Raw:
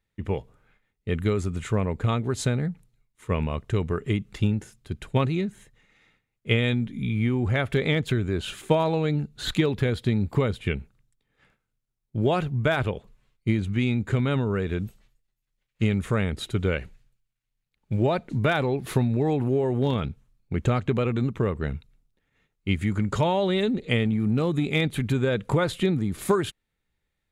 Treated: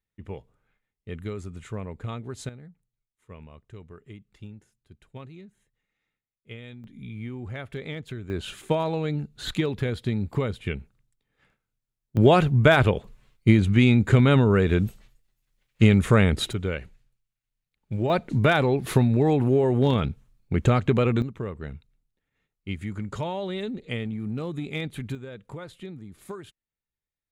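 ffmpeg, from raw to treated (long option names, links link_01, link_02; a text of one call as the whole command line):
ffmpeg -i in.wav -af "asetnsamples=nb_out_samples=441:pad=0,asendcmd='2.49 volume volume -19dB;6.84 volume volume -11.5dB;8.3 volume volume -3dB;12.17 volume volume 6.5dB;16.53 volume volume -3.5dB;18.1 volume volume 3dB;21.22 volume volume -7.5dB;25.15 volume volume -16dB',volume=-9.5dB" out.wav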